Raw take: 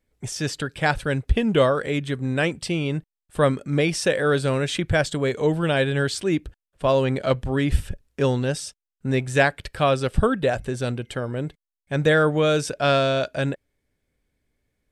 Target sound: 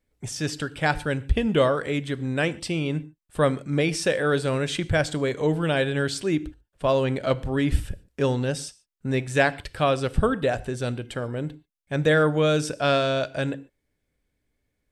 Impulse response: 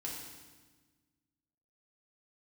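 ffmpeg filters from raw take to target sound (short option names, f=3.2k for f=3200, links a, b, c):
-filter_complex "[0:a]asplit=2[a][b];[1:a]atrim=start_sample=2205,atrim=end_sample=6615[c];[b][c]afir=irnorm=-1:irlink=0,volume=-12.5dB[d];[a][d]amix=inputs=2:normalize=0,volume=-3dB"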